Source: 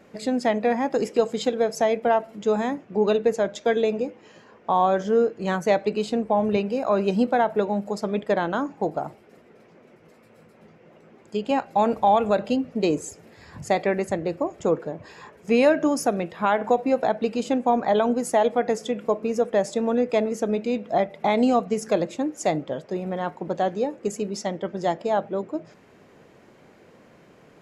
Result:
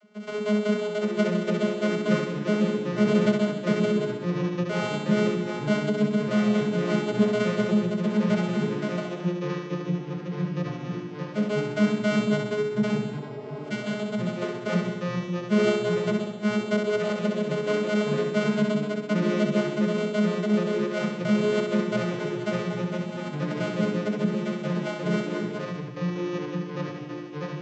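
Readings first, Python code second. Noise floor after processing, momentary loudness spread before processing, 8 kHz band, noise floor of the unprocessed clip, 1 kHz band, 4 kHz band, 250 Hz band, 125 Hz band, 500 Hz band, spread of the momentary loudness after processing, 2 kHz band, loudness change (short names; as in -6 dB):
-36 dBFS, 9 LU, -6.0 dB, -54 dBFS, -11.5 dB, +1.5 dB, +2.0 dB, +8.0 dB, -4.0 dB, 8 LU, +1.5 dB, -2.5 dB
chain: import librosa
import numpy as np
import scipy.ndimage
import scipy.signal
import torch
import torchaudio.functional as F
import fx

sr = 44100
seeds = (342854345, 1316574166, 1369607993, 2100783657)

p1 = np.r_[np.sort(x[:len(x) // 64 * 64].reshape(-1, 64), axis=1).ravel(), x[len(x) // 64 * 64:]]
p2 = fx.vocoder(p1, sr, bands=32, carrier='saw', carrier_hz=210.0)
p3 = p2 + fx.room_flutter(p2, sr, wall_m=11.0, rt60_s=0.93, dry=0)
p4 = fx.spec_repair(p3, sr, seeds[0], start_s=13.17, length_s=0.76, low_hz=240.0, high_hz=1400.0, source='both')
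p5 = fx.echo_pitch(p4, sr, ms=695, semitones=-3, count=3, db_per_echo=-6.0)
y = p5 * 10.0 ** (-2.5 / 20.0)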